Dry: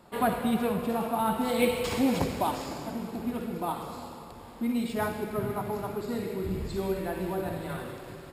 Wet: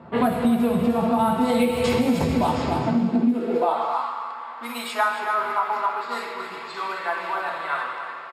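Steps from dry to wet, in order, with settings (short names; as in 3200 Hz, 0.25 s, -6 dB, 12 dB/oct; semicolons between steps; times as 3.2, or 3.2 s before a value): reverb RT60 0.25 s, pre-delay 4 ms, DRR 3 dB; low-pass opened by the level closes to 1900 Hz, open at -17.5 dBFS; echo 0.273 s -10.5 dB; high-pass sweep 86 Hz -> 1100 Hz, 2.75–4.04; compressor 8:1, threshold -26 dBFS, peak gain reduction 13.5 dB; gain +9 dB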